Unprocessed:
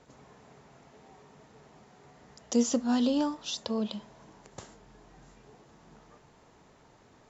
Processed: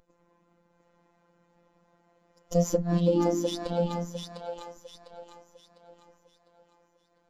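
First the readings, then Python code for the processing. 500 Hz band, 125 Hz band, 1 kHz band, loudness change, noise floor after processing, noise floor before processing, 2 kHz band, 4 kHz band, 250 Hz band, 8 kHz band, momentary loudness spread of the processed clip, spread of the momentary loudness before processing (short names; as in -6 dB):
+7.0 dB, +18.0 dB, +3.0 dB, +1.0 dB, -69 dBFS, -60 dBFS, -2.0 dB, -3.0 dB, -1.0 dB, n/a, 22 LU, 22 LU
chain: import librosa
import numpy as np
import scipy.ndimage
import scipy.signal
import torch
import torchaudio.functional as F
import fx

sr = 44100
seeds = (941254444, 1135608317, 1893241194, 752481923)

p1 = fx.lower_of_two(x, sr, delay_ms=3.8)
p2 = fx.echo_split(p1, sr, split_hz=400.0, low_ms=183, high_ms=702, feedback_pct=52, wet_db=-3.5)
p3 = np.clip(p2, -10.0 ** (-25.0 / 20.0), 10.0 ** (-25.0 / 20.0))
p4 = p2 + (p3 * 10.0 ** (-6.5 / 20.0))
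p5 = fx.robotise(p4, sr, hz=172.0)
y = fx.spectral_expand(p5, sr, expansion=1.5)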